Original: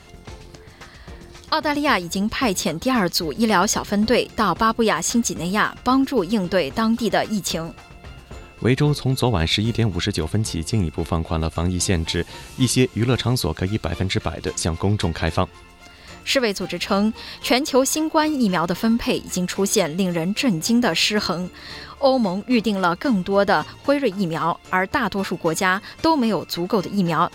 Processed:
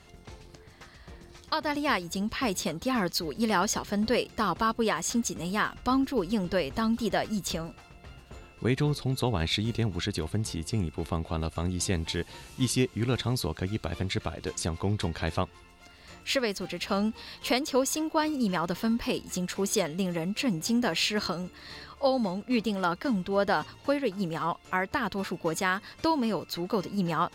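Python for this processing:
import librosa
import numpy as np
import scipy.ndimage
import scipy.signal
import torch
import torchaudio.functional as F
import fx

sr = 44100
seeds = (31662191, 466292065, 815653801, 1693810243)

y = fx.low_shelf(x, sr, hz=81.0, db=8.5, at=(5.65, 7.66))
y = F.gain(torch.from_numpy(y), -8.5).numpy()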